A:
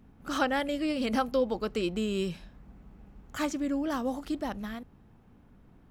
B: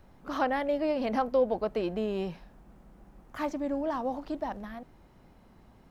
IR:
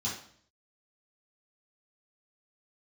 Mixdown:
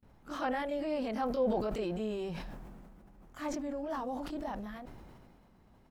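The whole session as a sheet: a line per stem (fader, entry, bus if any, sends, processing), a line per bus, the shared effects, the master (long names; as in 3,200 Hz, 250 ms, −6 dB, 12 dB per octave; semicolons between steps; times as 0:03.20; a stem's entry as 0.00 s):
−5.5 dB, 0.00 s, no send, automatic ducking −11 dB, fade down 0.40 s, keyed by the second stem
−7.0 dB, 24 ms, no send, no processing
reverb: not used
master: noise gate with hold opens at −56 dBFS; level that may fall only so fast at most 26 dB per second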